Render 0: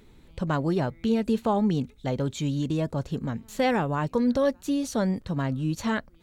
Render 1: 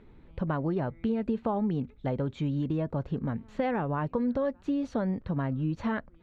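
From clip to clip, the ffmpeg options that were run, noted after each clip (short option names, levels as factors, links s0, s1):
-af "acompressor=threshold=0.0562:ratio=6,lowpass=2000"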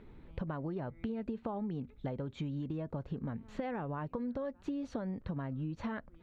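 -af "acompressor=threshold=0.0178:ratio=6"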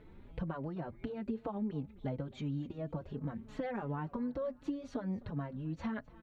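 -filter_complex "[0:a]aecho=1:1:260|520:0.0841|0.0244,asplit=2[s0][s1];[s1]adelay=4.2,afreqshift=2.8[s2];[s0][s2]amix=inputs=2:normalize=1,volume=1.33"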